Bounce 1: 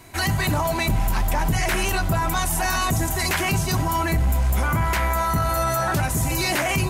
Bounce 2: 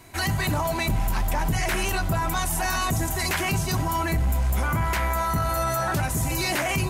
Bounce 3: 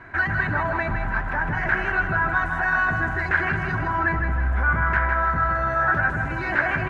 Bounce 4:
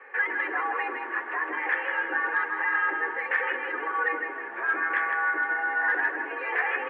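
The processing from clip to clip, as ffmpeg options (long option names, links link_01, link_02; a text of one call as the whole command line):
ffmpeg -i in.wav -af "acontrast=23,volume=-7.5dB" out.wav
ffmpeg -i in.wav -filter_complex "[0:a]alimiter=limit=-23dB:level=0:latency=1,lowpass=frequency=1600:width_type=q:width=7,asplit=2[link_01][link_02];[link_02]aecho=0:1:158|316|474|632|790:0.501|0.216|0.0927|0.0398|0.0171[link_03];[link_01][link_03]amix=inputs=2:normalize=0,volume=2dB" out.wav
ffmpeg -i in.wav -af "asoftclip=type=hard:threshold=-13dB,flanger=delay=2.9:depth=9.5:regen=-48:speed=0.29:shape=sinusoidal,highpass=frequency=200:width_type=q:width=0.5412,highpass=frequency=200:width_type=q:width=1.307,lowpass=frequency=2900:width_type=q:width=0.5176,lowpass=frequency=2900:width_type=q:width=0.7071,lowpass=frequency=2900:width_type=q:width=1.932,afreqshift=150" out.wav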